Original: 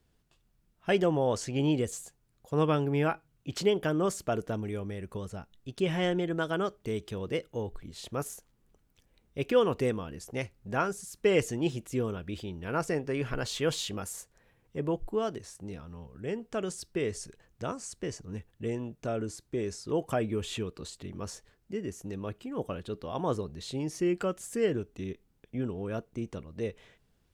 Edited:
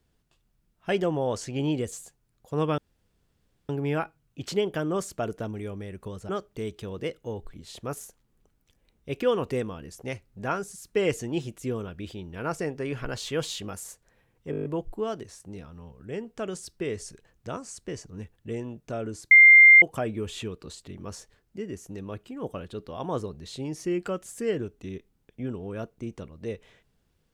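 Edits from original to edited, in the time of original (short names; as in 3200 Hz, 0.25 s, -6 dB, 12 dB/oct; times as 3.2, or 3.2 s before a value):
2.78 insert room tone 0.91 s
5.38–6.58 cut
14.8 stutter 0.02 s, 8 plays
19.46–19.97 bleep 2100 Hz -9 dBFS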